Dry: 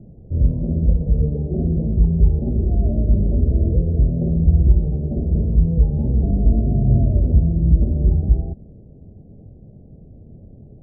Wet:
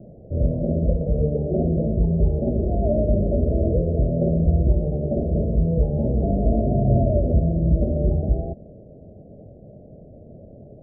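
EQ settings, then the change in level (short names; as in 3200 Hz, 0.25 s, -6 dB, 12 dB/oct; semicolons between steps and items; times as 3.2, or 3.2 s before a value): synth low-pass 620 Hz, resonance Q 4.9; low shelf 97 Hz -8 dB; 0.0 dB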